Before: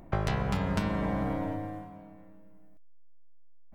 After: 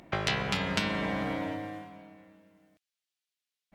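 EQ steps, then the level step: weighting filter D; 0.0 dB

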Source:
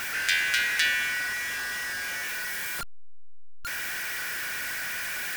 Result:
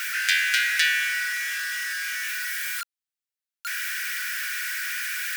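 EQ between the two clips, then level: steep high-pass 1300 Hz 48 dB/oct; +3.0 dB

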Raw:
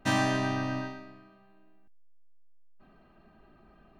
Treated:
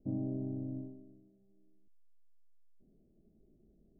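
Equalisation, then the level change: steep low-pass 500 Hz 36 dB/oct; -6.5 dB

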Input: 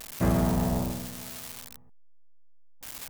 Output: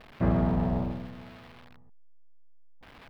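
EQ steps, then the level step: air absorption 400 m; high shelf 8200 Hz -5 dB; 0.0 dB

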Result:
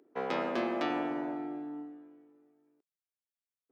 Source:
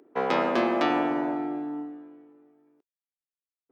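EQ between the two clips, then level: bell 1000 Hz -2.5 dB; -7.5 dB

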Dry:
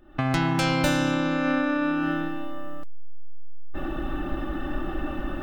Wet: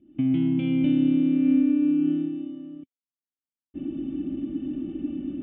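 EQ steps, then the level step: vocal tract filter i; HPF 110 Hz 12 dB/oct; low shelf 430 Hz +6.5 dB; +2.5 dB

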